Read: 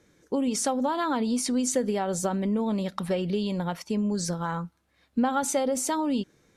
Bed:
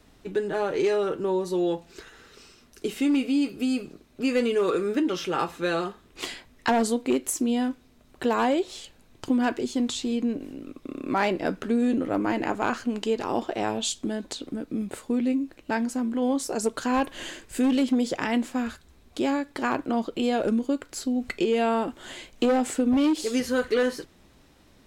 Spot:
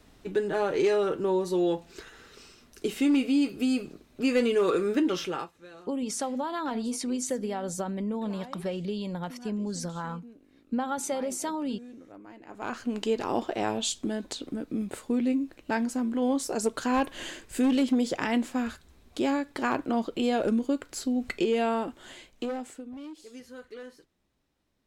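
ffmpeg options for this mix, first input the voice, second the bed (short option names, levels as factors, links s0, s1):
-filter_complex "[0:a]adelay=5550,volume=0.562[s0];[1:a]volume=10.6,afade=t=out:st=5.19:d=0.32:silence=0.0794328,afade=t=in:st=12.47:d=0.52:silence=0.0891251,afade=t=out:st=21.39:d=1.48:silence=0.11885[s1];[s0][s1]amix=inputs=2:normalize=0"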